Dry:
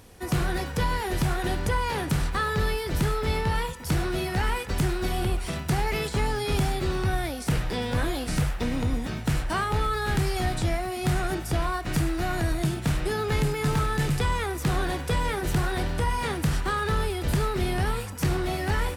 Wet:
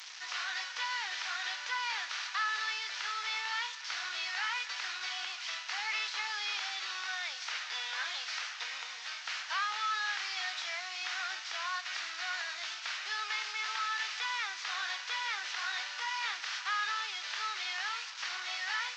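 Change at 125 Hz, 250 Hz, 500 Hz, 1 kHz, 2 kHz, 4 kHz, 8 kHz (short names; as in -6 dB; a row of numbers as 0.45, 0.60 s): under -40 dB, under -40 dB, -27.5 dB, -8.0 dB, -1.5 dB, +1.0 dB, -6.0 dB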